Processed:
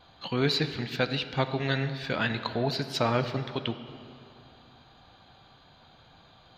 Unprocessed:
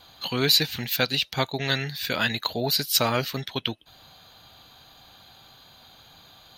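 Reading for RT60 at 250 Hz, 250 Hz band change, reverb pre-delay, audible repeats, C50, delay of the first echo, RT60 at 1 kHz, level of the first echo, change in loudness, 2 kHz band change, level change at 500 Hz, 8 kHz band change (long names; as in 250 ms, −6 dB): 2.8 s, 0.0 dB, 5 ms, no echo audible, 10.5 dB, no echo audible, 2.6 s, no echo audible, −5.0 dB, −4.0 dB, −0.5 dB, −16.5 dB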